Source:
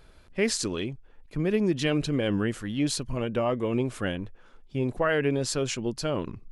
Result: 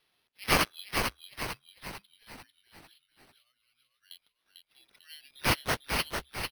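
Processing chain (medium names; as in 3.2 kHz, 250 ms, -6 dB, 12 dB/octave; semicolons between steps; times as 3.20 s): inverse Chebyshev high-pass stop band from 990 Hz, stop band 70 dB; spectral noise reduction 10 dB; 1.53–4.11 s: inverse Chebyshev low-pass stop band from 6.2 kHz, stop band 60 dB; sample-and-hold 6×; frequency-shifting echo 447 ms, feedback 48%, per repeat -70 Hz, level -5 dB; trim +7.5 dB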